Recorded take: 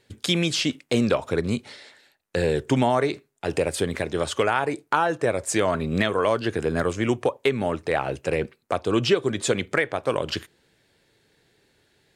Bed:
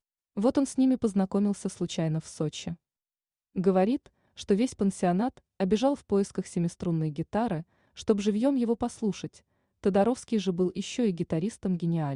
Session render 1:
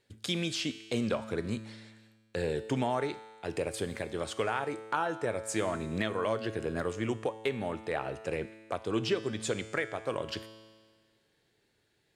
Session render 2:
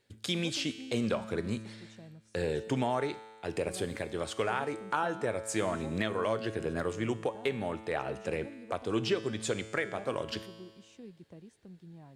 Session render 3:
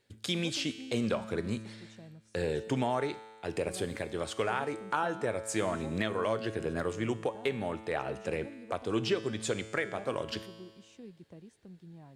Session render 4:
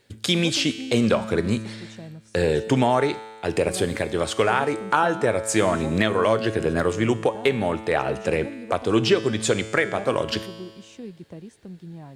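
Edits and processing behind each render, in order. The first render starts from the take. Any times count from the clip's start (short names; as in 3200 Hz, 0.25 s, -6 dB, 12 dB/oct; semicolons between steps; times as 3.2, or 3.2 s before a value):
resonator 110 Hz, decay 1.6 s, mix 70%
add bed -22.5 dB
nothing audible
gain +11 dB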